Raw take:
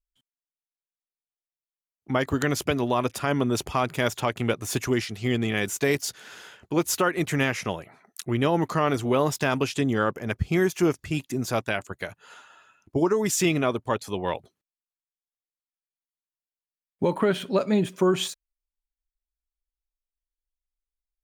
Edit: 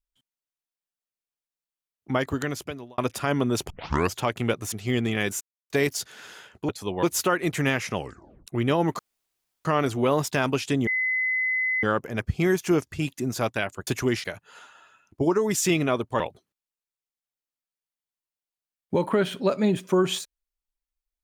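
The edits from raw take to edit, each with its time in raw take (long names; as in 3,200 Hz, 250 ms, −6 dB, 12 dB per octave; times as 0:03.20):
0:02.12–0:02.98: fade out
0:03.70: tape start 0.46 s
0:04.72–0:05.09: move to 0:11.99
0:05.78: splice in silence 0.29 s
0:07.69: tape stop 0.52 s
0:08.73: splice in room tone 0.66 s
0:09.95: insert tone 2,030 Hz −22 dBFS 0.96 s
0:13.95–0:14.29: move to 0:06.77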